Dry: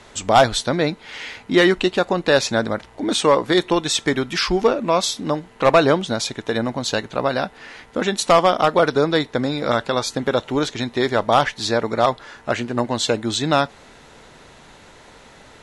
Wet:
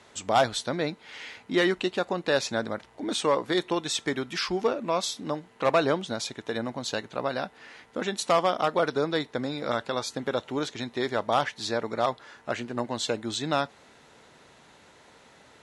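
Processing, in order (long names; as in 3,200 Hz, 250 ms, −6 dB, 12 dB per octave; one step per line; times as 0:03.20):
high-pass filter 68 Hz
low-shelf EQ 130 Hz −4 dB
level −8.5 dB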